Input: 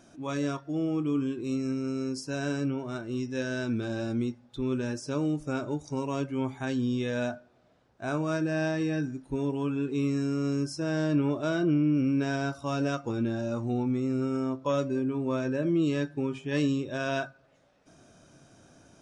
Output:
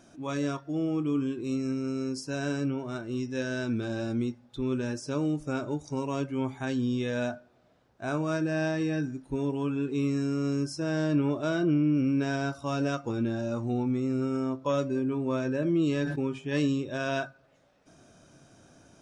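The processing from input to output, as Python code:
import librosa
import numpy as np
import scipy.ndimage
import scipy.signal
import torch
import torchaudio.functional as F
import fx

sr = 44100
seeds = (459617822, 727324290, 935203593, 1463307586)

y = fx.sustainer(x, sr, db_per_s=51.0, at=(14.96, 16.28))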